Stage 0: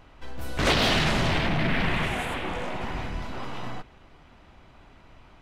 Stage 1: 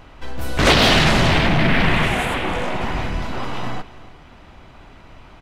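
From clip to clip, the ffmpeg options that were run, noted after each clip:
ffmpeg -i in.wav -af "aecho=1:1:305:0.119,volume=8.5dB" out.wav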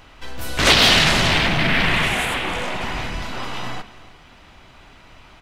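ffmpeg -i in.wav -af "tiltshelf=frequency=1400:gain=-4.5,bandreject=frequency=71.95:width_type=h:width=4,bandreject=frequency=143.9:width_type=h:width=4,bandreject=frequency=215.85:width_type=h:width=4,bandreject=frequency=287.8:width_type=h:width=4,bandreject=frequency=359.75:width_type=h:width=4,bandreject=frequency=431.7:width_type=h:width=4,bandreject=frequency=503.65:width_type=h:width=4,bandreject=frequency=575.6:width_type=h:width=4,bandreject=frequency=647.55:width_type=h:width=4,bandreject=frequency=719.5:width_type=h:width=4,bandreject=frequency=791.45:width_type=h:width=4,bandreject=frequency=863.4:width_type=h:width=4,bandreject=frequency=935.35:width_type=h:width=4,bandreject=frequency=1007.3:width_type=h:width=4,bandreject=frequency=1079.25:width_type=h:width=4,bandreject=frequency=1151.2:width_type=h:width=4,bandreject=frequency=1223.15:width_type=h:width=4,bandreject=frequency=1295.1:width_type=h:width=4,bandreject=frequency=1367.05:width_type=h:width=4,bandreject=frequency=1439:width_type=h:width=4,bandreject=frequency=1510.95:width_type=h:width=4,bandreject=frequency=1582.9:width_type=h:width=4,bandreject=frequency=1654.85:width_type=h:width=4,bandreject=frequency=1726.8:width_type=h:width=4,bandreject=frequency=1798.75:width_type=h:width=4,bandreject=frequency=1870.7:width_type=h:width=4,bandreject=frequency=1942.65:width_type=h:width=4,bandreject=frequency=2014.6:width_type=h:width=4,bandreject=frequency=2086.55:width_type=h:width=4,bandreject=frequency=2158.5:width_type=h:width=4,bandreject=frequency=2230.45:width_type=h:width=4,bandreject=frequency=2302.4:width_type=h:width=4,bandreject=frequency=2374.35:width_type=h:width=4,bandreject=frequency=2446.3:width_type=h:width=4,bandreject=frequency=2518.25:width_type=h:width=4,bandreject=frequency=2590.2:width_type=h:width=4" out.wav

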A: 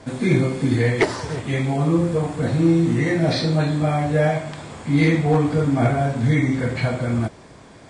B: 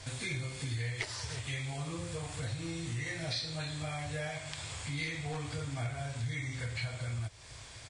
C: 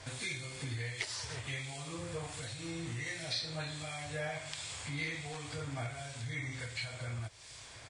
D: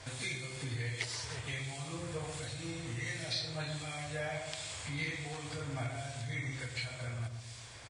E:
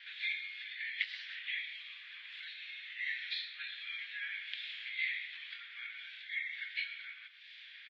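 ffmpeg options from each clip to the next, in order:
ffmpeg -i in.wav -af "firequalizer=gain_entry='entry(110,0);entry(190,-21);entry(520,-12);entry(2500,2);entry(4700,5)':delay=0.05:min_phase=1,acompressor=threshold=-38dB:ratio=3" out.wav
ffmpeg -i in.wav -filter_complex "[0:a]lowshelf=frequency=160:gain=-8,acrossover=split=2300[link_01][link_02];[link_01]aeval=exprs='val(0)*(1-0.5/2+0.5/2*cos(2*PI*1.4*n/s))':channel_layout=same[link_03];[link_02]aeval=exprs='val(0)*(1-0.5/2-0.5/2*cos(2*PI*1.4*n/s))':channel_layout=same[link_04];[link_03][link_04]amix=inputs=2:normalize=0,volume=2dB" out.wav
ffmpeg -i in.wav -filter_complex "[0:a]asplit=2[link_01][link_02];[link_02]adelay=128,lowpass=frequency=990:poles=1,volume=-6dB,asplit=2[link_03][link_04];[link_04]adelay=128,lowpass=frequency=990:poles=1,volume=0.51,asplit=2[link_05][link_06];[link_06]adelay=128,lowpass=frequency=990:poles=1,volume=0.51,asplit=2[link_07][link_08];[link_08]adelay=128,lowpass=frequency=990:poles=1,volume=0.51,asplit=2[link_09][link_10];[link_10]adelay=128,lowpass=frequency=990:poles=1,volume=0.51,asplit=2[link_11][link_12];[link_12]adelay=128,lowpass=frequency=990:poles=1,volume=0.51[link_13];[link_01][link_03][link_05][link_07][link_09][link_11][link_13]amix=inputs=7:normalize=0" out.wav
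ffmpeg -i in.wav -af "asuperpass=centerf=2500:order=8:qfactor=1.2,volume=4dB" out.wav

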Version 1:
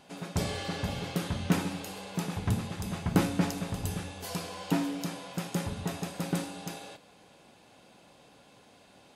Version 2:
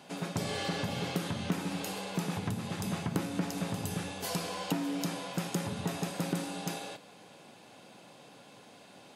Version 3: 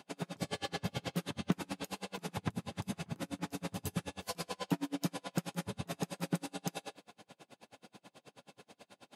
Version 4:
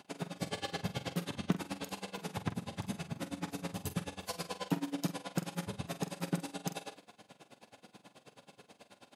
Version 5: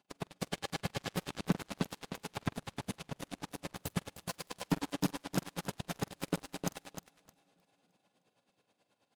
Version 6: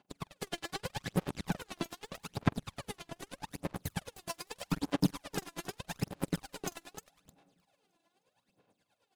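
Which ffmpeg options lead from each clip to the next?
ffmpeg -i in.wav -af "acompressor=threshold=-32dB:ratio=6,highpass=frequency=110:width=0.5412,highpass=frequency=110:width=1.3066,volume=3.5dB" out.wav
ffmpeg -i in.wav -af "aeval=exprs='val(0)*pow(10,-36*(0.5-0.5*cos(2*PI*9.3*n/s))/20)':channel_layout=same,volume=2dB" out.wav
ffmpeg -i in.wav -filter_complex "[0:a]asplit=2[link_01][link_02];[link_02]adelay=46,volume=-11.5dB[link_03];[link_01][link_03]amix=inputs=2:normalize=0" out.wav
ffmpeg -i in.wav -af "aecho=1:1:308|616|924|1232|1540|1848:0.531|0.26|0.127|0.0625|0.0306|0.015,asoftclip=type=tanh:threshold=-27.5dB,aeval=exprs='0.0422*(cos(1*acos(clip(val(0)/0.0422,-1,1)))-cos(1*PI/2))+0.015*(cos(3*acos(clip(val(0)/0.0422,-1,1)))-cos(3*PI/2))':channel_layout=same,volume=6dB" out.wav
ffmpeg -i in.wav -af "aphaser=in_gain=1:out_gain=1:delay=3:decay=0.69:speed=0.81:type=sinusoidal,volume=-3dB" out.wav

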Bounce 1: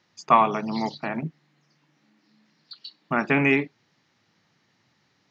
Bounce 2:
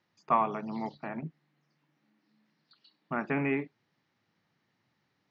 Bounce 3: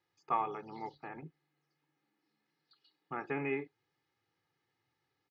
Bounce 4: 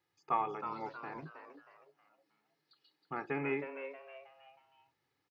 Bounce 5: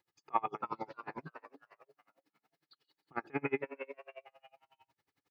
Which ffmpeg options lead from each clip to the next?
ffmpeg -i in.wav -filter_complex "[0:a]acrossover=split=2600[link_01][link_02];[link_02]acompressor=threshold=-48dB:ratio=4:attack=1:release=60[link_03];[link_01][link_03]amix=inputs=2:normalize=0,aemphasis=mode=reproduction:type=50fm,volume=-8.5dB" out.wav
ffmpeg -i in.wav -af "aecho=1:1:2.4:0.73,volume=-7.5dB" out.wav
ffmpeg -i in.wav -filter_complex "[0:a]asplit=5[link_01][link_02][link_03][link_04][link_05];[link_02]adelay=317,afreqshift=130,volume=-9dB[link_06];[link_03]adelay=634,afreqshift=260,volume=-17.4dB[link_07];[link_04]adelay=951,afreqshift=390,volume=-25.8dB[link_08];[link_05]adelay=1268,afreqshift=520,volume=-34.2dB[link_09];[link_01][link_06][link_07][link_08][link_09]amix=inputs=5:normalize=0" out.wav
ffmpeg -i in.wav -af "aeval=exprs='val(0)*pow(10,-32*(0.5-0.5*cos(2*PI*11*n/s))/20)':channel_layout=same,volume=6dB" out.wav

